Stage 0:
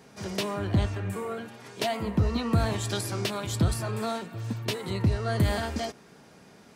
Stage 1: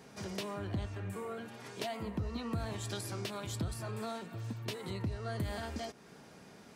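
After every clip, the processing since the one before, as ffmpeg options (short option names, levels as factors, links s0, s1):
-af "acompressor=threshold=0.01:ratio=2,volume=0.794"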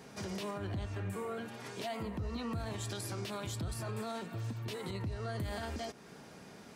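-af "alimiter=level_in=2.82:limit=0.0631:level=0:latency=1:release=62,volume=0.355,volume=1.33"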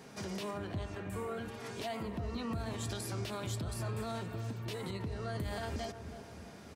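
-filter_complex "[0:a]bandreject=f=50:t=h:w=6,bandreject=f=100:t=h:w=6,asplit=2[s0][s1];[s1]adelay=323,lowpass=f=920:p=1,volume=0.376,asplit=2[s2][s3];[s3]adelay=323,lowpass=f=920:p=1,volume=0.54,asplit=2[s4][s5];[s5]adelay=323,lowpass=f=920:p=1,volume=0.54,asplit=2[s6][s7];[s7]adelay=323,lowpass=f=920:p=1,volume=0.54,asplit=2[s8][s9];[s9]adelay=323,lowpass=f=920:p=1,volume=0.54,asplit=2[s10][s11];[s11]adelay=323,lowpass=f=920:p=1,volume=0.54[s12];[s0][s2][s4][s6][s8][s10][s12]amix=inputs=7:normalize=0"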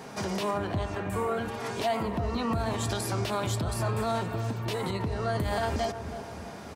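-af "equalizer=f=870:t=o:w=1.3:g=6,volume=2.37"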